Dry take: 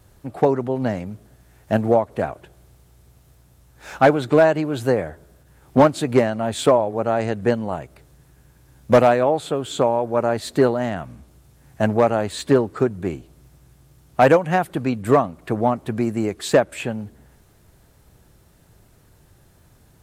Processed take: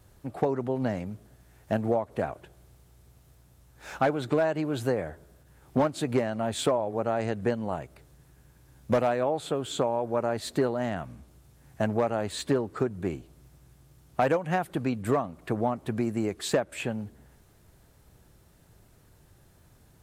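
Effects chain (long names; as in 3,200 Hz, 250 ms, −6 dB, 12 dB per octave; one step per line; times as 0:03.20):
downward compressor 2.5 to 1, threshold −19 dBFS, peak gain reduction 7.5 dB
level −4.5 dB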